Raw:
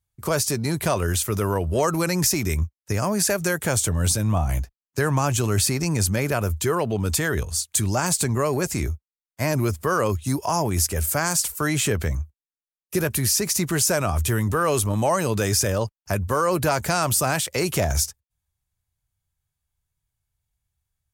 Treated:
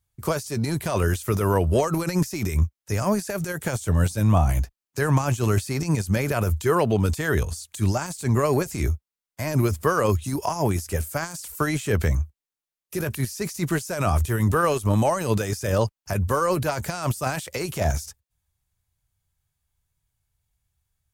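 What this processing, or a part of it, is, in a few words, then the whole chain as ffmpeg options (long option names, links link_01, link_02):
de-esser from a sidechain: -filter_complex "[0:a]asplit=2[link_01][link_02];[link_02]highpass=4600,apad=whole_len=932139[link_03];[link_01][link_03]sidechaincompress=threshold=-38dB:ratio=10:attack=2:release=31,volume=3.5dB"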